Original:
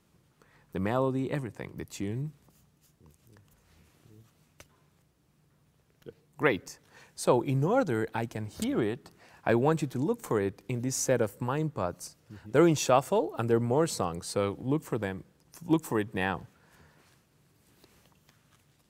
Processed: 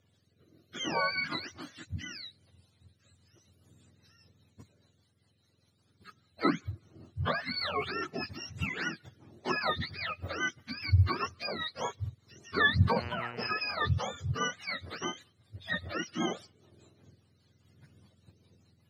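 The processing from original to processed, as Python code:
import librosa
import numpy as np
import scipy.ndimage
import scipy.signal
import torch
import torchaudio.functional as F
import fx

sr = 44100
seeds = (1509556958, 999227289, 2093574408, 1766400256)

y = fx.octave_mirror(x, sr, pivot_hz=770.0)
y = fx.dmg_buzz(y, sr, base_hz=120.0, harmonics=25, level_db=-42.0, tilt_db=-2, odd_only=False, at=(12.95, 13.46), fade=0.02)
y = fx.rotary_switch(y, sr, hz=0.6, then_hz=5.0, switch_at_s=2.58)
y = y * librosa.db_to_amplitude(1.0)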